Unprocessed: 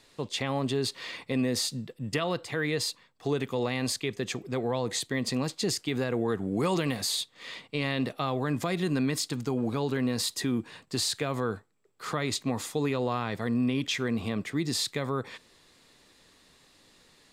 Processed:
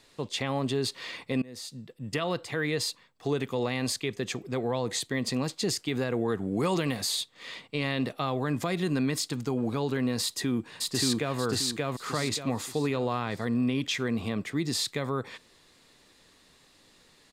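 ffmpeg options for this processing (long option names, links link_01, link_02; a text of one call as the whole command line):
ffmpeg -i in.wav -filter_complex "[0:a]asplit=2[link_01][link_02];[link_02]afade=type=in:start_time=10.22:duration=0.01,afade=type=out:start_time=11.38:duration=0.01,aecho=0:1:580|1160|1740|2320|2900:0.944061|0.330421|0.115647|0.0404766|0.0141668[link_03];[link_01][link_03]amix=inputs=2:normalize=0,asplit=2[link_04][link_05];[link_04]atrim=end=1.42,asetpts=PTS-STARTPTS,afade=type=out:start_time=1.416:duration=0.004:curve=hsin:silence=0.0668344[link_06];[link_05]atrim=start=1.42,asetpts=PTS-STARTPTS,afade=type=in:duration=0.88:silence=0.0668344[link_07];[link_06][link_07]concat=n=2:v=0:a=1" out.wav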